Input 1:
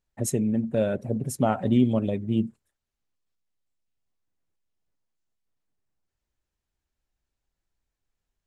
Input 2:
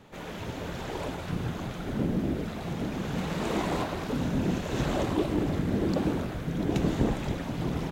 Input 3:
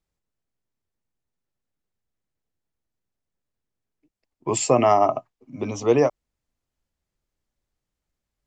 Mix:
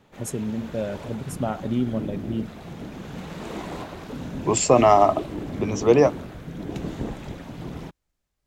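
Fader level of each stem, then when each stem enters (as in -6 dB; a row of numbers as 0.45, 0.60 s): -4.0, -4.5, +2.0 dB; 0.00, 0.00, 0.00 s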